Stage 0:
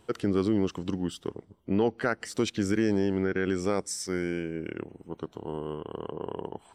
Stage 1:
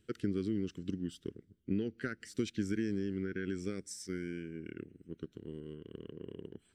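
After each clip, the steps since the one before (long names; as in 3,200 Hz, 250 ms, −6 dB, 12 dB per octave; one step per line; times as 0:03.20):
transient designer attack +5 dB, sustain +1 dB
drawn EQ curve 260 Hz 0 dB, 400 Hz −4 dB, 900 Hz −29 dB, 1,500 Hz −3 dB
level −8.5 dB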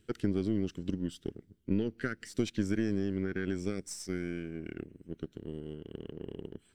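gain on one half-wave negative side −3 dB
level +4.5 dB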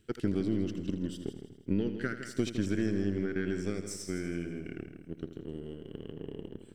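echo machine with several playback heads 81 ms, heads first and second, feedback 46%, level −12 dB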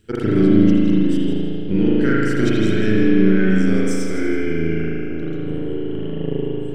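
convolution reverb RT60 2.6 s, pre-delay 37 ms, DRR −9 dB
level +7 dB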